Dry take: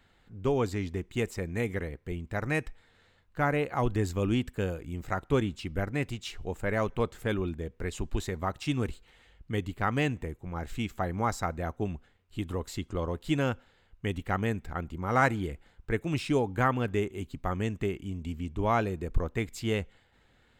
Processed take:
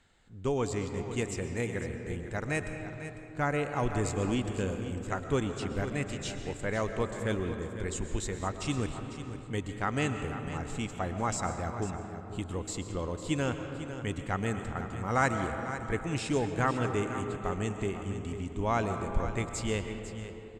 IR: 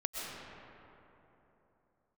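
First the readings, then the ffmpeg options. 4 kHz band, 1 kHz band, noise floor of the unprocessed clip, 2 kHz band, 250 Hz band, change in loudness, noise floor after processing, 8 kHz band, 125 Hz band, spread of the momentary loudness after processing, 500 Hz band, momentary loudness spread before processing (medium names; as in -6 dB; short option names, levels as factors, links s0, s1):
-0.5 dB, -1.5 dB, -65 dBFS, -1.5 dB, -1.5 dB, -1.5 dB, -44 dBFS, +6.5 dB, -1.5 dB, 7 LU, -1.5 dB, 10 LU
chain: -filter_complex "[0:a]lowpass=f=7800:t=q:w=3.3,aecho=1:1:500:0.251,asplit=2[s0][s1];[1:a]atrim=start_sample=2205[s2];[s1][s2]afir=irnorm=-1:irlink=0,volume=0.531[s3];[s0][s3]amix=inputs=2:normalize=0,volume=0.501"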